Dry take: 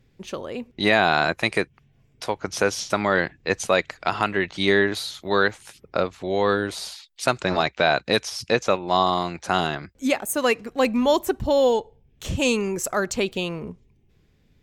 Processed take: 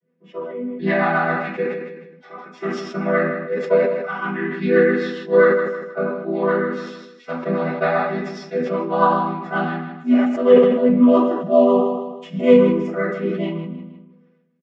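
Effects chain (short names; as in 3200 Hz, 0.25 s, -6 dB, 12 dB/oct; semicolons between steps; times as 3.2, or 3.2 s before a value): chord vocoder minor triad, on E3; harmonic-percussive split percussive -13 dB; spectral noise reduction 9 dB; rotary speaker horn 7.5 Hz; feedback echo 0.157 s, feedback 29%, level -12 dB; reverb RT60 0.35 s, pre-delay 3 ms, DRR -13 dB; sustainer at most 49 dB/s; gain -7.5 dB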